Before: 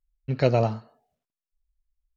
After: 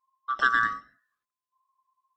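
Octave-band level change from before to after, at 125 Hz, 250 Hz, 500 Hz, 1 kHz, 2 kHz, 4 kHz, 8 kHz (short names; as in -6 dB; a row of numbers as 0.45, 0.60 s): -28.5 dB, -17.0 dB, -25.0 dB, +6.0 dB, +16.0 dB, +2.5 dB, n/a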